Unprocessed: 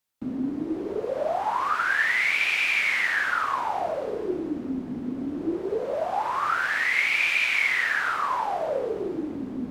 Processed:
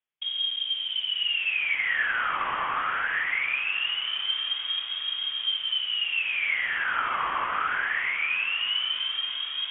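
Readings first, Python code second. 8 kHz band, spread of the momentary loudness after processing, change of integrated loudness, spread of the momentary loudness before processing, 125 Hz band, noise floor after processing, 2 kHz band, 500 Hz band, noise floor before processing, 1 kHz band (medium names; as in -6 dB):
under -35 dB, 3 LU, -1.0 dB, 10 LU, under -10 dB, -34 dBFS, -2.5 dB, -19.0 dB, -35 dBFS, -3.5 dB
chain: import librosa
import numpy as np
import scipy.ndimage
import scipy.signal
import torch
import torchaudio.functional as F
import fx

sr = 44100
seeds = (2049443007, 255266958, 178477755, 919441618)

p1 = fx.low_shelf(x, sr, hz=99.0, db=-5.0)
p2 = fx.quant_dither(p1, sr, seeds[0], bits=6, dither='none')
p3 = p1 + F.gain(torch.from_numpy(p2), -8.0).numpy()
p4 = fx.air_absorb(p3, sr, metres=430.0)
p5 = p4 + fx.echo_heads(p4, sr, ms=310, heads='first and second', feedback_pct=75, wet_db=-20.5, dry=0)
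p6 = fx.freq_invert(p5, sr, carrier_hz=3500)
y = F.gain(torch.from_numpy(p6), -2.0).numpy()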